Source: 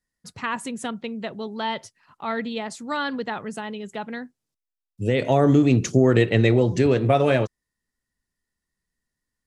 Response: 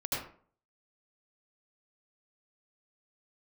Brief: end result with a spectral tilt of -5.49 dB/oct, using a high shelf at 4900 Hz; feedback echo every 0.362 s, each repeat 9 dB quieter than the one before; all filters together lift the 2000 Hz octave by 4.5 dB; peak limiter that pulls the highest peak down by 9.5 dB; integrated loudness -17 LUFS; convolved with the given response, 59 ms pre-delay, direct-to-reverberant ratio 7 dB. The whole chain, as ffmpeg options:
-filter_complex "[0:a]equalizer=f=2k:t=o:g=6,highshelf=f=4.9k:g=-3.5,alimiter=limit=-13dB:level=0:latency=1,aecho=1:1:362|724|1086|1448:0.355|0.124|0.0435|0.0152,asplit=2[a][b];[1:a]atrim=start_sample=2205,adelay=59[c];[b][c]afir=irnorm=-1:irlink=0,volume=-12.5dB[d];[a][d]amix=inputs=2:normalize=0,volume=7.5dB"

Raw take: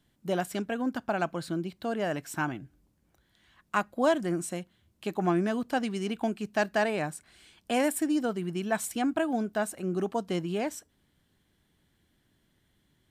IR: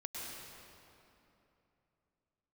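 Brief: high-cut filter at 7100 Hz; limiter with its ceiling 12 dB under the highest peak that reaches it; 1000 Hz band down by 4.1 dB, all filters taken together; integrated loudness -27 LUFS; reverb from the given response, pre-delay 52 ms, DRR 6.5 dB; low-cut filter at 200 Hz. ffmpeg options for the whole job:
-filter_complex "[0:a]highpass=200,lowpass=7.1k,equalizer=f=1k:t=o:g=-6,alimiter=level_in=2dB:limit=-24dB:level=0:latency=1,volume=-2dB,asplit=2[a][b];[1:a]atrim=start_sample=2205,adelay=52[c];[b][c]afir=irnorm=-1:irlink=0,volume=-6.5dB[d];[a][d]amix=inputs=2:normalize=0,volume=9dB"

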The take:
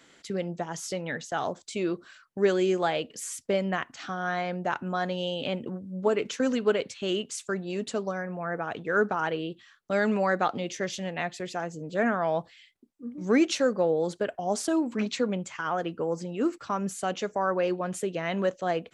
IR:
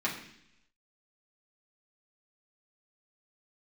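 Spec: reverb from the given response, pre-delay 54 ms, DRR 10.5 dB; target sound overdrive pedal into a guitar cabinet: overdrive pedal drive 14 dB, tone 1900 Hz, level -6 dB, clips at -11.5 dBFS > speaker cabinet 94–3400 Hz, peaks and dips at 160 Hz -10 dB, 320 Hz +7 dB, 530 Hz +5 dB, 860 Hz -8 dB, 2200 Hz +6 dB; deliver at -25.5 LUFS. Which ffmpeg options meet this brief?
-filter_complex "[0:a]asplit=2[a][b];[1:a]atrim=start_sample=2205,adelay=54[c];[b][c]afir=irnorm=-1:irlink=0,volume=-18dB[d];[a][d]amix=inputs=2:normalize=0,asplit=2[e][f];[f]highpass=f=720:p=1,volume=14dB,asoftclip=type=tanh:threshold=-11.5dB[g];[e][g]amix=inputs=2:normalize=0,lowpass=f=1.9k:p=1,volume=-6dB,highpass=94,equalizer=f=160:t=q:w=4:g=-10,equalizer=f=320:t=q:w=4:g=7,equalizer=f=530:t=q:w=4:g=5,equalizer=f=860:t=q:w=4:g=-8,equalizer=f=2.2k:t=q:w=4:g=6,lowpass=f=3.4k:w=0.5412,lowpass=f=3.4k:w=1.3066,volume=-1.5dB"

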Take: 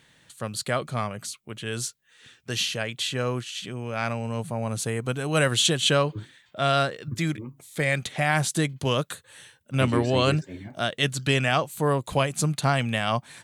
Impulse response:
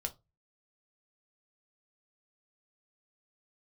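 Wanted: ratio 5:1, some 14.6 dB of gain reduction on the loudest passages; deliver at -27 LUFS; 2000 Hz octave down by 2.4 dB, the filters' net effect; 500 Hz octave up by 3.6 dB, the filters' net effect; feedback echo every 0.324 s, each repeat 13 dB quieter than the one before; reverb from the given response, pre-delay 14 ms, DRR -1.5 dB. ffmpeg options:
-filter_complex "[0:a]equalizer=f=500:t=o:g=4.5,equalizer=f=2k:t=o:g=-3.5,acompressor=threshold=-33dB:ratio=5,aecho=1:1:324|648|972:0.224|0.0493|0.0108,asplit=2[a][b];[1:a]atrim=start_sample=2205,adelay=14[c];[b][c]afir=irnorm=-1:irlink=0,volume=1.5dB[d];[a][d]amix=inputs=2:normalize=0,volume=5dB"

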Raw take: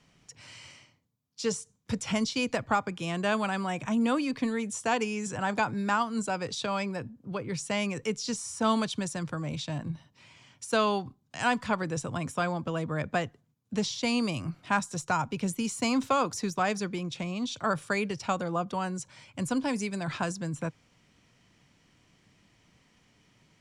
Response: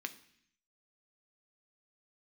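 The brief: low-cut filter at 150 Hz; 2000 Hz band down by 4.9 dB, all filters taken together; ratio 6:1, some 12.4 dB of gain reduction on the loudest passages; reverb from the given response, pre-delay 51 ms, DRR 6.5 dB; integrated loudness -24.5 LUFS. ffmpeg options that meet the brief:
-filter_complex "[0:a]highpass=150,equalizer=f=2k:t=o:g=-7,acompressor=threshold=-37dB:ratio=6,asplit=2[a][b];[1:a]atrim=start_sample=2205,adelay=51[c];[b][c]afir=irnorm=-1:irlink=0,volume=-6.5dB[d];[a][d]amix=inputs=2:normalize=0,volume=16dB"

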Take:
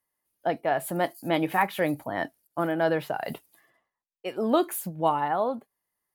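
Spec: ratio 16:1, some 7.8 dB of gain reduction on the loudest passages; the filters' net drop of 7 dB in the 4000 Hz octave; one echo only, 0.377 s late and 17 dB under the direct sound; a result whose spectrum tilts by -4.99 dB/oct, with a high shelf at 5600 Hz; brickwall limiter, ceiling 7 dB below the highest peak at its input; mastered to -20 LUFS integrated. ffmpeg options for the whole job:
-af "equalizer=f=4k:t=o:g=-9,highshelf=f=5.6k:g=-3.5,acompressor=threshold=-25dB:ratio=16,alimiter=limit=-23.5dB:level=0:latency=1,aecho=1:1:377:0.141,volume=15dB"

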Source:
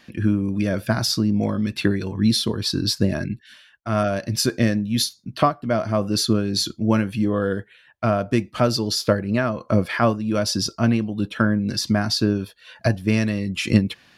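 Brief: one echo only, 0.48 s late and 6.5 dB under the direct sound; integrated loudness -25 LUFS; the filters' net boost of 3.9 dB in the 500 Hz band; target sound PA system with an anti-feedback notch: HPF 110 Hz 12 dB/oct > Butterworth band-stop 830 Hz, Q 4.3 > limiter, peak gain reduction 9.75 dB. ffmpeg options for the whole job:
-af "highpass=110,asuperstop=centerf=830:order=8:qfactor=4.3,equalizer=f=500:t=o:g=5,aecho=1:1:480:0.473,volume=-2.5dB,alimiter=limit=-14.5dB:level=0:latency=1"

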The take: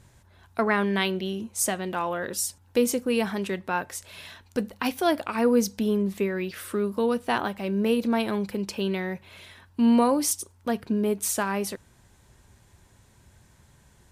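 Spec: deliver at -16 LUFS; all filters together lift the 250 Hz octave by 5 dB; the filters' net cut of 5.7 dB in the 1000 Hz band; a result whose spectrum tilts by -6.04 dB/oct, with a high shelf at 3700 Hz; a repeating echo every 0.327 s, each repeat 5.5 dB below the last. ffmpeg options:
-af "equalizer=f=250:t=o:g=6,equalizer=f=1k:t=o:g=-7.5,highshelf=f=3.7k:g=-8,aecho=1:1:327|654|981|1308|1635|1962|2289:0.531|0.281|0.149|0.079|0.0419|0.0222|0.0118,volume=7dB"

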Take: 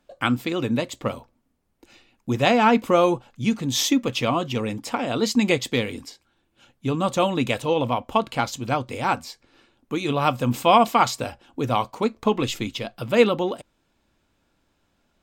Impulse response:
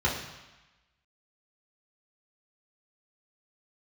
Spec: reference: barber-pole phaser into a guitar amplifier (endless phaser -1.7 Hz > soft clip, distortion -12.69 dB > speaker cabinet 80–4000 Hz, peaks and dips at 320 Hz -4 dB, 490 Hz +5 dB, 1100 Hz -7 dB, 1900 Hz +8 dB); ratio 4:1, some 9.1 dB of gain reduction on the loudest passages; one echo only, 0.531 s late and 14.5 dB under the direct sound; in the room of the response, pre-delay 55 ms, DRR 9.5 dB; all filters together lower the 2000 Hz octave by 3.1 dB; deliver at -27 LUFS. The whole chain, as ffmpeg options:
-filter_complex "[0:a]equalizer=f=2k:t=o:g=-7.5,acompressor=threshold=-22dB:ratio=4,aecho=1:1:531:0.188,asplit=2[a][b];[1:a]atrim=start_sample=2205,adelay=55[c];[b][c]afir=irnorm=-1:irlink=0,volume=-21.5dB[d];[a][d]amix=inputs=2:normalize=0,asplit=2[e][f];[f]afreqshift=-1.7[g];[e][g]amix=inputs=2:normalize=1,asoftclip=threshold=-25dB,highpass=80,equalizer=f=320:t=q:w=4:g=-4,equalizer=f=490:t=q:w=4:g=5,equalizer=f=1.1k:t=q:w=4:g=-7,equalizer=f=1.9k:t=q:w=4:g=8,lowpass=f=4k:w=0.5412,lowpass=f=4k:w=1.3066,volume=6dB"

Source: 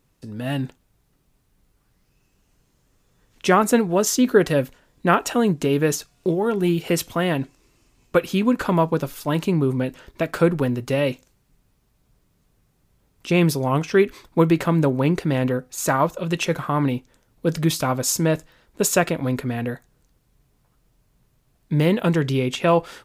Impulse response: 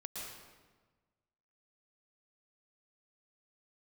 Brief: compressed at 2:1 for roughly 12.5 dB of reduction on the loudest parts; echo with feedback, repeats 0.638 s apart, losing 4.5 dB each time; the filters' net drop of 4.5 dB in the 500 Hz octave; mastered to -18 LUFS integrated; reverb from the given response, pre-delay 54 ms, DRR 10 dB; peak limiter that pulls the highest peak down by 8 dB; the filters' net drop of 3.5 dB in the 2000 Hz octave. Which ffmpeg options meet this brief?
-filter_complex "[0:a]equalizer=f=500:t=o:g=-5.5,equalizer=f=2k:t=o:g=-4.5,acompressor=threshold=-38dB:ratio=2,alimiter=level_in=2dB:limit=-24dB:level=0:latency=1,volume=-2dB,aecho=1:1:638|1276|1914|2552|3190|3828|4466|5104|5742:0.596|0.357|0.214|0.129|0.0772|0.0463|0.0278|0.0167|0.01,asplit=2[a][b];[1:a]atrim=start_sample=2205,adelay=54[c];[b][c]afir=irnorm=-1:irlink=0,volume=-9dB[d];[a][d]amix=inputs=2:normalize=0,volume=17dB"

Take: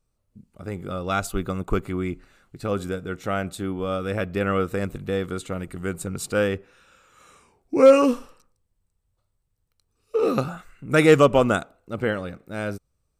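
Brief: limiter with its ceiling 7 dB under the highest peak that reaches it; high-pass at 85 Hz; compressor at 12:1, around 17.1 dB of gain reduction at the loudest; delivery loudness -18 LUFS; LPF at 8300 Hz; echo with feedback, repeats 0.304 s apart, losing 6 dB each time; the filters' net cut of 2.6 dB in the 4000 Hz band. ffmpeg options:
-af "highpass=85,lowpass=8.3k,equalizer=f=4k:t=o:g=-3.5,acompressor=threshold=-26dB:ratio=12,alimiter=limit=-23dB:level=0:latency=1,aecho=1:1:304|608|912|1216|1520|1824:0.501|0.251|0.125|0.0626|0.0313|0.0157,volume=16dB"

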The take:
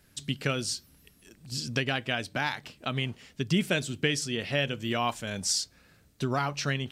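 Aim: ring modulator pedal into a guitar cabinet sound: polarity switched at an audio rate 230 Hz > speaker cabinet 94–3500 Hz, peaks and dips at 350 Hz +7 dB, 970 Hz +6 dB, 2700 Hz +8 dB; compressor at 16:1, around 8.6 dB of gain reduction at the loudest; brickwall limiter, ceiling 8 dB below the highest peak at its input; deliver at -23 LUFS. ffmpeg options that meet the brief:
-af "acompressor=threshold=-29dB:ratio=16,alimiter=level_in=1dB:limit=-24dB:level=0:latency=1,volume=-1dB,aeval=exprs='val(0)*sgn(sin(2*PI*230*n/s))':c=same,highpass=94,equalizer=f=350:t=q:w=4:g=7,equalizer=f=970:t=q:w=4:g=6,equalizer=f=2.7k:t=q:w=4:g=8,lowpass=f=3.5k:w=0.5412,lowpass=f=3.5k:w=1.3066,volume=12.5dB"

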